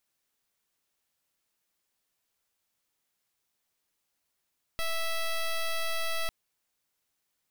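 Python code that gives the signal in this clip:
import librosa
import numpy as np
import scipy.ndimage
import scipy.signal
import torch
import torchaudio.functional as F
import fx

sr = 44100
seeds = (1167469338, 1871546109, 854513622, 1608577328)

y = fx.pulse(sr, length_s=1.5, hz=657.0, level_db=-29.5, duty_pct=9)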